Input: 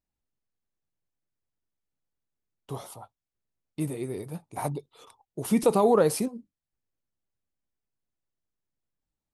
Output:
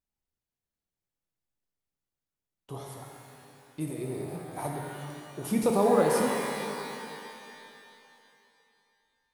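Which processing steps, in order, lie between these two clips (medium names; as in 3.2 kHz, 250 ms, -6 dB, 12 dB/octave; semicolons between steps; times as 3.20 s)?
pitch-shifted reverb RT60 2.8 s, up +12 st, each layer -8 dB, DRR 0 dB; trim -4.5 dB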